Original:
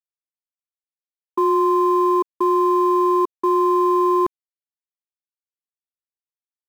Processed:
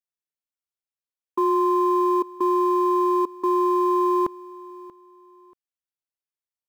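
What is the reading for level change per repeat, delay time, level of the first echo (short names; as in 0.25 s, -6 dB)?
-11.0 dB, 0.634 s, -20.0 dB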